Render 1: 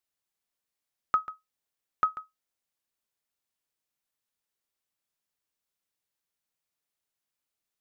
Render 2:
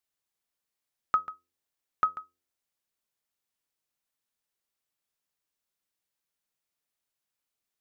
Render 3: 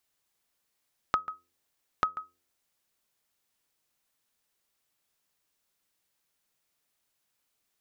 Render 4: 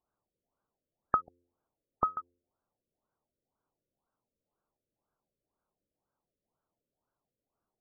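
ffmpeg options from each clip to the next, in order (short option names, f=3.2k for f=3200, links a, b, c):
-af "bandreject=f=87.61:t=h:w=4,bandreject=f=175.22:t=h:w=4,bandreject=f=262.83:t=h:w=4,bandreject=f=350.44:t=h:w=4,bandreject=f=438.05:t=h:w=4,bandreject=f=525.66:t=h:w=4"
-af "acompressor=threshold=-37dB:ratio=3,volume=8dB"
-af "asuperstop=centerf=3800:order=4:qfactor=0.51,afftfilt=real='re*lt(b*sr/1024,600*pow(1700/600,0.5+0.5*sin(2*PI*2*pts/sr)))':imag='im*lt(b*sr/1024,600*pow(1700/600,0.5+0.5*sin(2*PI*2*pts/sr)))':win_size=1024:overlap=0.75,volume=2.5dB"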